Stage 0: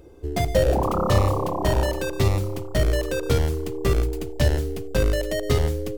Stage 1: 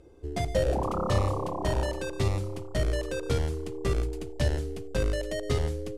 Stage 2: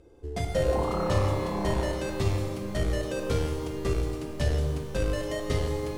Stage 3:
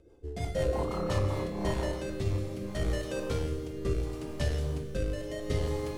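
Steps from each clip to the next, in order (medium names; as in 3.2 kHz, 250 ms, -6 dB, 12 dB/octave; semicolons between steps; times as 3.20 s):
low-pass 11 kHz 24 dB/octave; trim -6.5 dB
pitch-shifted reverb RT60 1.8 s, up +12 st, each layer -8 dB, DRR 4 dB; trim -1.5 dB
rotary cabinet horn 6 Hz, later 0.7 Hz, at 0.94 s; trim -2 dB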